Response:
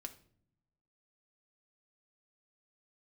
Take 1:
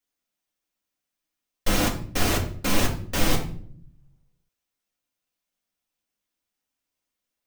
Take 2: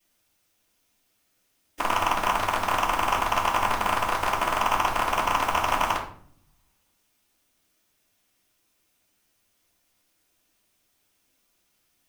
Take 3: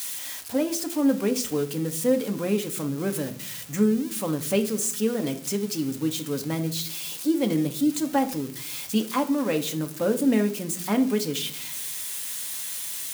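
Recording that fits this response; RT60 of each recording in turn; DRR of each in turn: 3; 0.55 s, 0.55 s, no single decay rate; -3.5 dB, -13.5 dB, 5.0 dB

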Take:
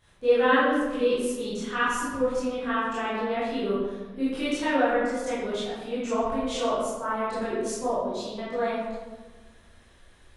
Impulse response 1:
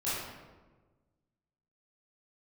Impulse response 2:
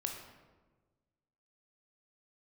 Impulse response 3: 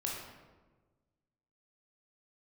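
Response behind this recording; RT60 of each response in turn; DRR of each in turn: 1; 1.3 s, 1.3 s, 1.3 s; -12.0 dB, 2.0 dB, -3.0 dB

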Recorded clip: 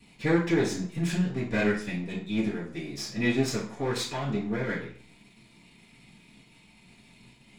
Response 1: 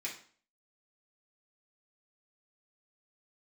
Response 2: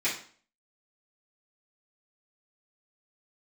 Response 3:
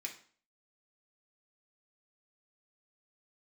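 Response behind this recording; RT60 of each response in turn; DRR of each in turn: 2; 0.45 s, 0.45 s, 0.45 s; -5.0 dB, -11.5 dB, 0.0 dB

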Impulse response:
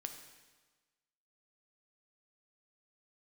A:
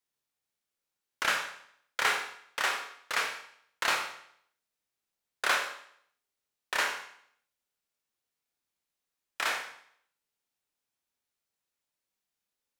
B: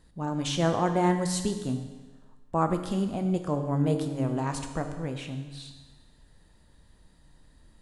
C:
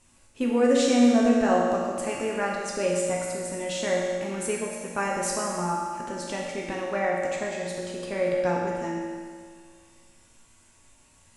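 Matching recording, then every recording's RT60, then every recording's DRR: B; 0.65 s, 1.3 s, 1.9 s; 3.0 dB, 5.5 dB, -3.5 dB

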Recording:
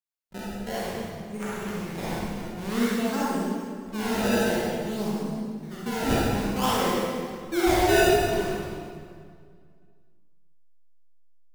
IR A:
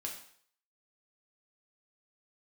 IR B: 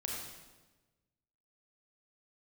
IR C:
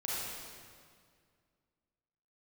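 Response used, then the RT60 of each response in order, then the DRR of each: C; 0.55 s, 1.2 s, 2.0 s; -1.0 dB, -2.0 dB, -7.5 dB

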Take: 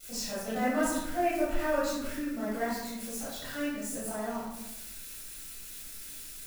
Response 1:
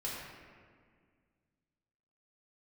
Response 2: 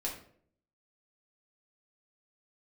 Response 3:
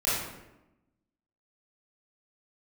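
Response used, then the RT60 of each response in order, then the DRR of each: 3; 1.9 s, 0.60 s, 0.95 s; -6.5 dB, -3.5 dB, -11.0 dB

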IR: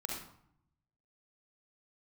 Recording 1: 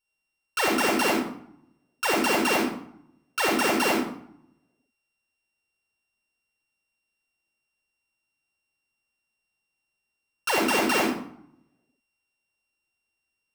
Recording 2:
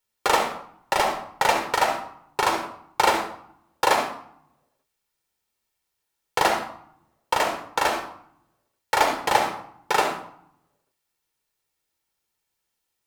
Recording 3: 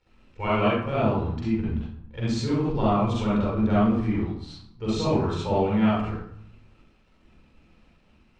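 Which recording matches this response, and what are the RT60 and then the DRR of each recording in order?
1; 0.65 s, 0.70 s, 0.65 s; -1.5 dB, 4.0 dB, -8.0 dB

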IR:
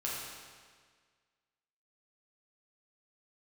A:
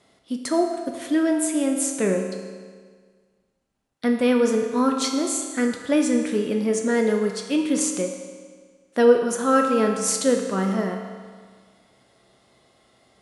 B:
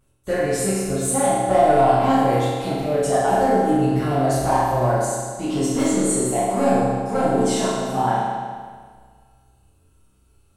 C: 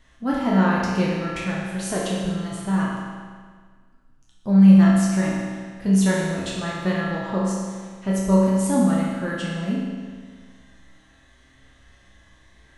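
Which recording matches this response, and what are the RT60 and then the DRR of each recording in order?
C; 1.7 s, 1.7 s, 1.7 s; 2.5 dB, -12.0 dB, -6.5 dB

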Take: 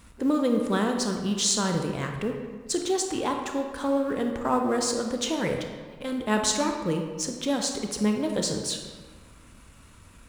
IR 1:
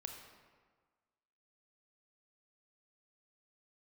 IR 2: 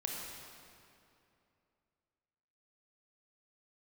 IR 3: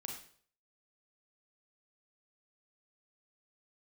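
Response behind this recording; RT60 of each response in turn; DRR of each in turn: 1; 1.5 s, 2.7 s, 0.55 s; 3.0 dB, -1.5 dB, 0.5 dB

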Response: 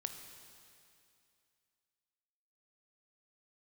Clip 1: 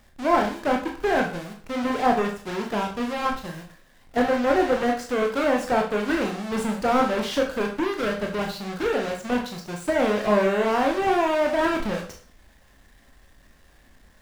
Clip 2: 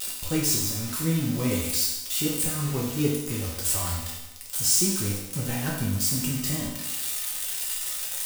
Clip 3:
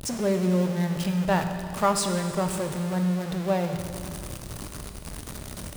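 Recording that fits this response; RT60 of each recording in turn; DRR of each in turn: 3; 0.45 s, 0.95 s, 2.5 s; 1.0 dB, -5.0 dB, 6.0 dB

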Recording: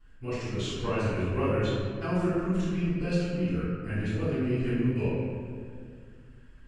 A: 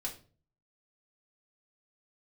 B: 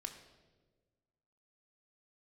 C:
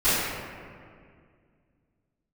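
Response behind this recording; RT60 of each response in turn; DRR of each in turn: C; 0.40 s, 1.4 s, 2.1 s; -2.5 dB, 3.0 dB, -19.0 dB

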